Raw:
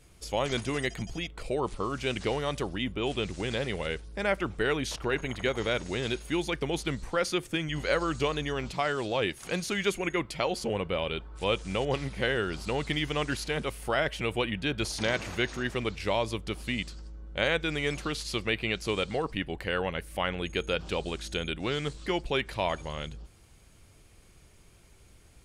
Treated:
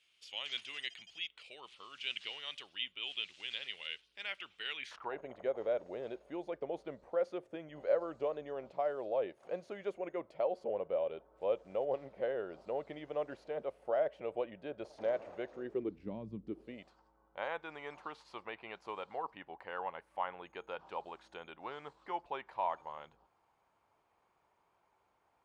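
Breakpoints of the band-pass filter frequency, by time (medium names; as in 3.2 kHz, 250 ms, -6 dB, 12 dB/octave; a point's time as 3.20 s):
band-pass filter, Q 3.6
4.76 s 3 kHz
5.18 s 590 Hz
15.48 s 590 Hz
16.30 s 170 Hz
16.95 s 910 Hz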